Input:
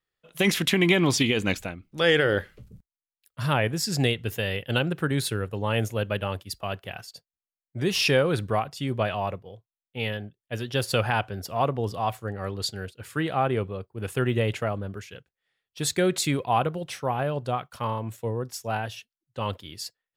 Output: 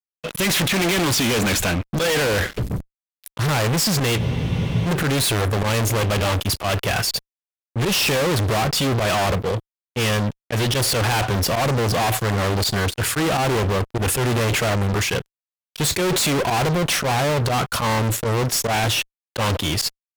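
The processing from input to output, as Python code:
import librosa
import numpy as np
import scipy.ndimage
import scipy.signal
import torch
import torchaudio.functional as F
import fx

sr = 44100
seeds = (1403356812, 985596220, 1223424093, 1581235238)

y = fx.auto_swell(x, sr, attack_ms=105.0)
y = fx.fuzz(y, sr, gain_db=48.0, gate_db=-56.0)
y = fx.spec_freeze(y, sr, seeds[0], at_s=4.2, hold_s=0.66)
y = y * librosa.db_to_amplitude(-5.5)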